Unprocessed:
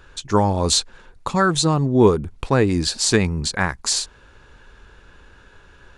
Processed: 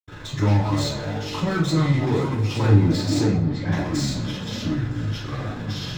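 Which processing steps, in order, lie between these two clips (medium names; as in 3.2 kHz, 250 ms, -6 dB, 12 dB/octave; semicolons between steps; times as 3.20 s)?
0.53–1.29 s: steep high-pass 690 Hz 48 dB/octave; 1.95–2.58 s: tilt EQ +4 dB/octave; waveshaping leveller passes 1; AM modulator 23 Hz, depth 90%; power-law waveshaper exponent 0.35; echo whose repeats swap between lows and highs 240 ms, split 2.4 kHz, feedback 64%, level -13 dB; ever faster or slower copies 152 ms, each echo -6 st, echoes 2, each echo -6 dB; 3.16–3.64 s: tape spacing loss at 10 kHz 24 dB; reverberation, pre-delay 76 ms; trim -3.5 dB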